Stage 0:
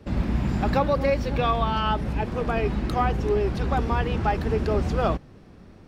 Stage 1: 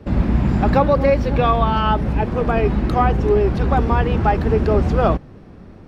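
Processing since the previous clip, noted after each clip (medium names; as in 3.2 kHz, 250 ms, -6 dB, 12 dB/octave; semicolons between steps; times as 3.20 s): treble shelf 2.8 kHz -9.5 dB; trim +7.5 dB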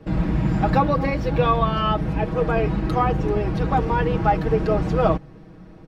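comb 6.3 ms, depth 77%; trim -4.5 dB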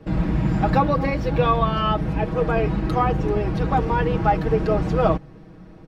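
no audible change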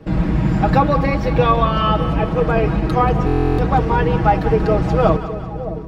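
two-band feedback delay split 760 Hz, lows 617 ms, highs 185 ms, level -11 dB; buffer glitch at 3.26 s, samples 1024, times 13; trim +4 dB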